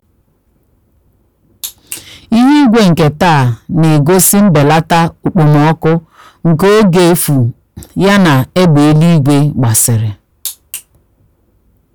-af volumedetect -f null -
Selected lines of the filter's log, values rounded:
mean_volume: -10.2 dB
max_volume: -4.8 dB